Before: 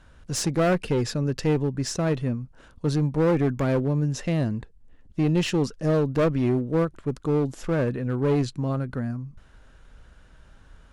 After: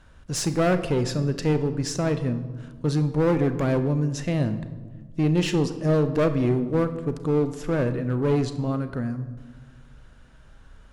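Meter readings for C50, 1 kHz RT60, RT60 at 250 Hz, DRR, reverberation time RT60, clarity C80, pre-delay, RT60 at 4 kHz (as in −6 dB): 11.5 dB, 1.3 s, 2.0 s, 10.0 dB, 1.4 s, 13.5 dB, 34 ms, 0.85 s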